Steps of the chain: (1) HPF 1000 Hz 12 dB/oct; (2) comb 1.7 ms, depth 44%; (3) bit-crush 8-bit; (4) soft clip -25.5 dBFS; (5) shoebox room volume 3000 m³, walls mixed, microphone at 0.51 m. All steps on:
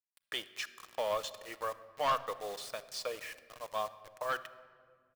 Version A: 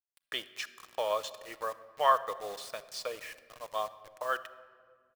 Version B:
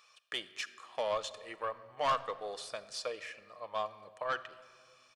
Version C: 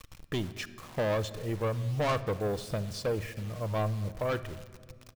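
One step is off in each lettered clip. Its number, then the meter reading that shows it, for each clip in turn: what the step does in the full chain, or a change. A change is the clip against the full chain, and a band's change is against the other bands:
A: 4, distortion -9 dB; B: 3, distortion -20 dB; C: 1, 125 Hz band +27.0 dB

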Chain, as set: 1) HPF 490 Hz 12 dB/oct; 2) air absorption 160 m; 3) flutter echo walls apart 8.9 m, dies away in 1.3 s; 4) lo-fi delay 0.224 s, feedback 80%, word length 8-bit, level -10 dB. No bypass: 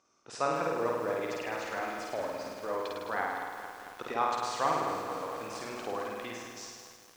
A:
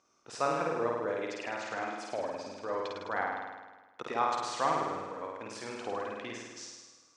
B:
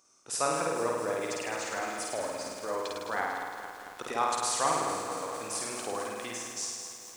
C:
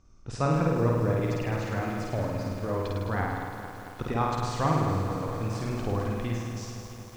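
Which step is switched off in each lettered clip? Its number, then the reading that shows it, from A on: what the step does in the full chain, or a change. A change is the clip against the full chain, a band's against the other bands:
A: 4, momentary loudness spread change +2 LU; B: 2, 8 kHz band +12.5 dB; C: 1, 125 Hz band +22.5 dB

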